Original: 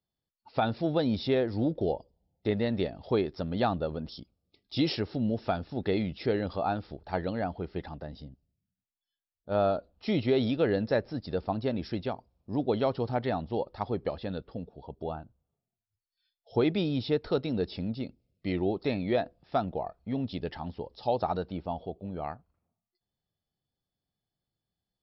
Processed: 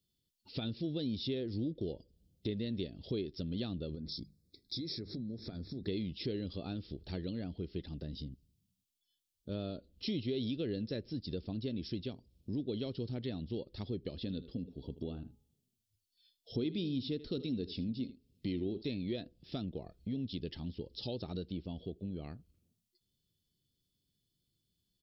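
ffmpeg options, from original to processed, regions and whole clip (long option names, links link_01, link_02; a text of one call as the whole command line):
ffmpeg -i in.wav -filter_complex "[0:a]asettb=1/sr,asplit=3[link_01][link_02][link_03];[link_01]atrim=end=3.954[link_04];[link_02]atrim=start=3.95:end=5.88,asetpts=PTS-STARTPTS,afade=type=in:duration=0.004:curve=qsin,afade=type=out:start_time=1.926:duration=0.004:curve=qsin,asuperstop=centerf=2900:order=4:qfactor=2,acompressor=threshold=-38dB:ratio=4:attack=3.2:release=140:knee=1:detection=peak,bandreject=frequency=50:width_type=h:width=6,bandreject=frequency=100:width_type=h:width=6,bandreject=frequency=150:width_type=h:width=6,bandreject=frequency=200:width_type=h:width=6[link_05];[link_03]atrim=start=5.876[link_06];[link_04][link_05]acrossfade=duration=0.004:curve1=hsin:curve2=qsin[link_07];[link_07][link_06]acrossfade=duration=0.004:curve1=qsin:curve2=hsin,asettb=1/sr,asplit=3[link_08][link_09][link_10];[link_08]atrim=end=14.164[link_11];[link_09]atrim=start=14.16:end=18.82,asetpts=PTS-STARTPTS,afade=type=in:duration=0.004:curve=qsin,afade=type=out:start_time=4.656:duration=0.004:curve=qsin,equalizer=frequency=250:width=4.4:gain=6,bandreject=frequency=417.8:width_type=h:width=4,bandreject=frequency=835.6:width_type=h:width=4,bandreject=frequency=1253.4:width_type=h:width=4,aecho=1:1:78:0.141,atrim=end_sample=205506[link_12];[link_10]atrim=start=18.816[link_13];[link_11][link_12]acrossfade=duration=0.004:curve1=hsin:curve2=qsin[link_14];[link_14][link_13]acrossfade=duration=0.004:curve1=qsin:curve2=hsin,firequalizer=gain_entry='entry(350,0);entry(780,-22);entry(3100,3)':delay=0.05:min_phase=1,acompressor=threshold=-46dB:ratio=2.5,volume=5.5dB" out.wav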